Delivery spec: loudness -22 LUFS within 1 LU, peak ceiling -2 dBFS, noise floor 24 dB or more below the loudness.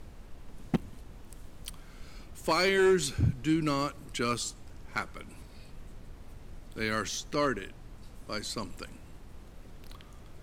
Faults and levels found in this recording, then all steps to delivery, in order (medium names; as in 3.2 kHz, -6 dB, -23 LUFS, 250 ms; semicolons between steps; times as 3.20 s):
clipped samples 0.2%; clipping level -18.5 dBFS; noise floor -50 dBFS; noise floor target -55 dBFS; loudness -30.5 LUFS; peak level -18.5 dBFS; loudness target -22.0 LUFS
-> clip repair -18.5 dBFS; noise print and reduce 6 dB; trim +8.5 dB